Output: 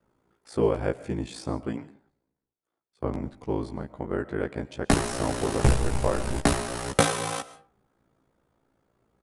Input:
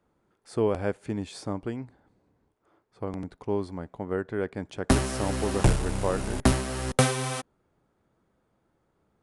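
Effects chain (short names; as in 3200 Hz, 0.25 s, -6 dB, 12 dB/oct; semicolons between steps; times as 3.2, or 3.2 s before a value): ring modulator 28 Hz; doubler 15 ms -4 dB; digital reverb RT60 0.43 s, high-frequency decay 0.55×, pre-delay 90 ms, DRR 16 dB; 1.73–3.43 three-band expander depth 70%; gain +2.5 dB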